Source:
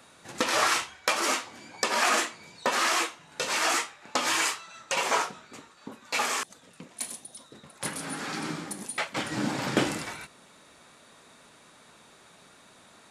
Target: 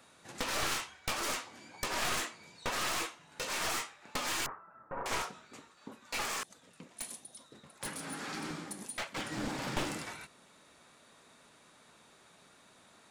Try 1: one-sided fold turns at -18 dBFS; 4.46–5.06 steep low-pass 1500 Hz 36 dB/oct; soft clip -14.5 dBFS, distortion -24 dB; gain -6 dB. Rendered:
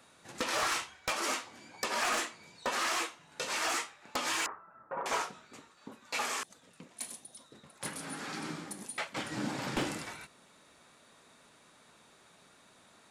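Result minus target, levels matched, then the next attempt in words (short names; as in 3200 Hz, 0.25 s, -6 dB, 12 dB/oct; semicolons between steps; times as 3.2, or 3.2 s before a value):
one-sided fold: distortion -14 dB
one-sided fold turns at -27 dBFS; 4.46–5.06 steep low-pass 1500 Hz 36 dB/oct; soft clip -14.5 dBFS, distortion -22 dB; gain -6 dB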